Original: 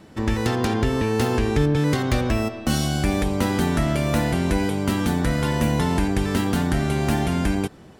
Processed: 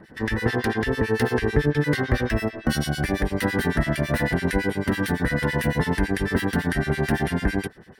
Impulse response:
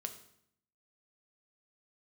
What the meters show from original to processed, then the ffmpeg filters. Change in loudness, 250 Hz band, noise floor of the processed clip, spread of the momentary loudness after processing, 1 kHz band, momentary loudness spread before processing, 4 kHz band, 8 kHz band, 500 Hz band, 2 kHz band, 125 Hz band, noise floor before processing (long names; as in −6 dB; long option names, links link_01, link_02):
−1.5 dB, −2.5 dB, −45 dBFS, 3 LU, −3.0 dB, 2 LU, −3.0 dB, −5.5 dB, −0.5 dB, +4.0 dB, −2.5 dB, −45 dBFS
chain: -filter_complex "[0:a]superequalizer=7b=1.41:11b=3.16:15b=0.447,acrossover=split=1600[link_01][link_02];[link_01]aeval=exprs='val(0)*(1-1/2+1/2*cos(2*PI*9*n/s))':channel_layout=same[link_03];[link_02]aeval=exprs='val(0)*(1-1/2-1/2*cos(2*PI*9*n/s))':channel_layout=same[link_04];[link_03][link_04]amix=inputs=2:normalize=0,volume=1.5dB"